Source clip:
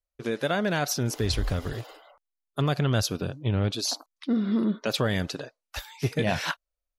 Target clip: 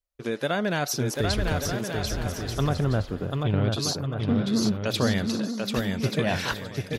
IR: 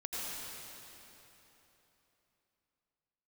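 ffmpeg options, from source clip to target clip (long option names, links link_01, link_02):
-filter_complex "[0:a]asettb=1/sr,asplit=3[link_01][link_02][link_03];[link_01]atrim=end=2.694[link_04];[link_02]atrim=start=2.69:end=3.45,asetpts=PTS-STARTPTS,afade=type=in:duration=0.004:curve=qsin,afade=type=out:start_time=0.756:duration=0.004:curve=qsin,lowpass=1400[link_05];[link_03]atrim=start=3.446[link_06];[link_04][link_05]acrossfade=duration=0.004:curve1=hsin:curve2=qsin[link_07];[link_07][link_06]acrossfade=duration=0.004:curve1=qsin:curve2=hsin,aecho=1:1:740|1184|1450|1610|1706:0.631|0.398|0.251|0.158|0.1"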